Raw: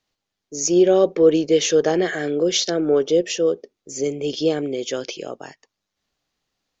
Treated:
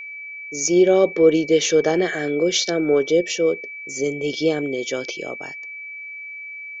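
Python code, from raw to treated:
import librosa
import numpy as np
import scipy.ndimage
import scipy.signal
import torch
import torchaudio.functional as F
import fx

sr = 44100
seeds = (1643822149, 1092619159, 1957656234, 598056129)

y = x + 10.0 ** (-32.0 / 20.0) * np.sin(2.0 * np.pi * 2300.0 * np.arange(len(x)) / sr)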